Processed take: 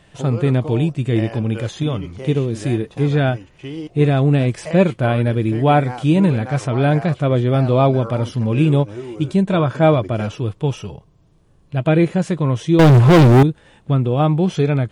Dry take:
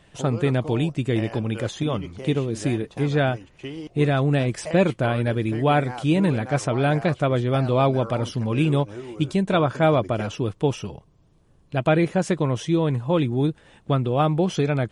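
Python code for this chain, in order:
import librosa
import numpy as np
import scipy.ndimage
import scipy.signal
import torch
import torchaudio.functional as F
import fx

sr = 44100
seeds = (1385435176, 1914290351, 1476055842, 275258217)

y = fx.hpss(x, sr, part='harmonic', gain_db=9)
y = fx.leveller(y, sr, passes=5, at=(12.79, 13.43))
y = y * librosa.db_to_amplitude(-2.5)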